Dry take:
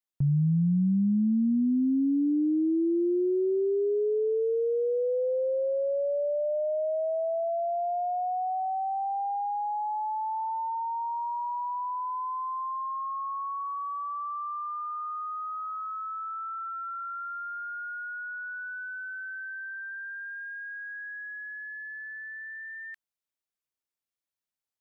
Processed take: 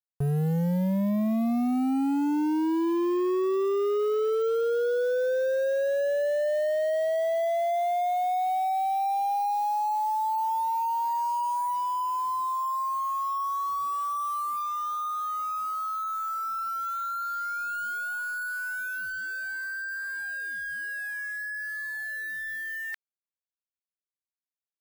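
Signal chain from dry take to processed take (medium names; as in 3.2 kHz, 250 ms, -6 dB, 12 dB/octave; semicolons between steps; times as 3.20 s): reverse; upward compressor, threshold -36 dBFS; reverse; resampled via 32 kHz; word length cut 8-bit, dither none; overload inside the chain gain 28 dB; trim +4 dB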